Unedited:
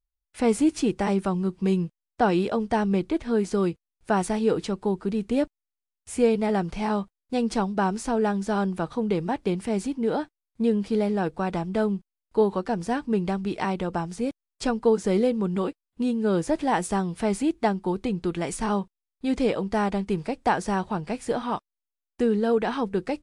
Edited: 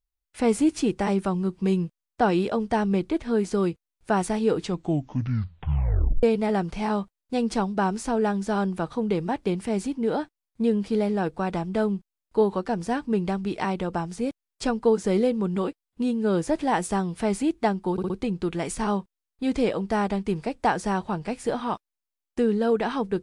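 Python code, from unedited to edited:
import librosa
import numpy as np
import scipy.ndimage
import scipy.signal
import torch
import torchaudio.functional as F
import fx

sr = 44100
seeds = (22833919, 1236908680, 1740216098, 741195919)

y = fx.edit(x, sr, fx.tape_stop(start_s=4.58, length_s=1.65),
    fx.stutter(start_s=17.92, slice_s=0.06, count=4), tone=tone)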